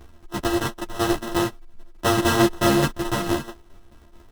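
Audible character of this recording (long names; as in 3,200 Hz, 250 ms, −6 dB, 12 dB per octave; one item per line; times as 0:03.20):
a buzz of ramps at a fixed pitch in blocks of 128 samples
tremolo saw down 4.6 Hz, depth 60%
aliases and images of a low sample rate 2,300 Hz, jitter 0%
a shimmering, thickened sound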